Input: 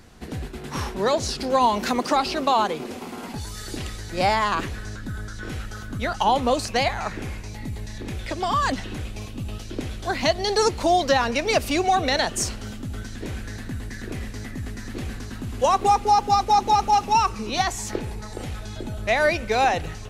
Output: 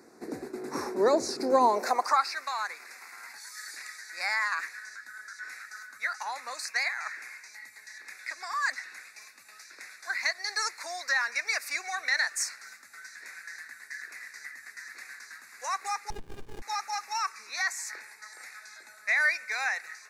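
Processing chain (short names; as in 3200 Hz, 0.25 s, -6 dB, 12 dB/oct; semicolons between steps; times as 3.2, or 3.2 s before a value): high-pass sweep 330 Hz -> 1800 Hz, 1.64–2.32; Butterworth band-stop 3100 Hz, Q 1.6; 16.1–16.62 running maximum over 65 samples; gain -5 dB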